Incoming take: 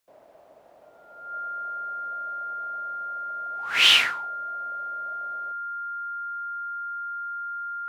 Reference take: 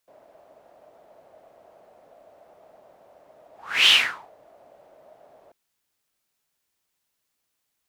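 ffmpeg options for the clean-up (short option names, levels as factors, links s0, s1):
-af "bandreject=f=1400:w=30"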